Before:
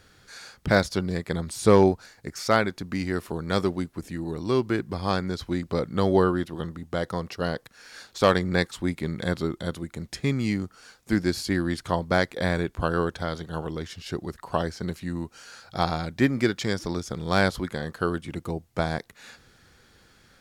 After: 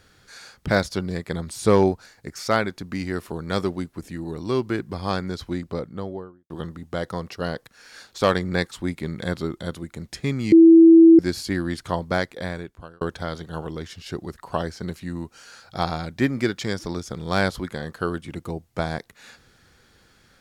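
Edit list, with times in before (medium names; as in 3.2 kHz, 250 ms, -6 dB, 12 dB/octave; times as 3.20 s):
5.40–6.50 s: studio fade out
10.52–11.19 s: bleep 329 Hz -6.5 dBFS
12.06–13.01 s: fade out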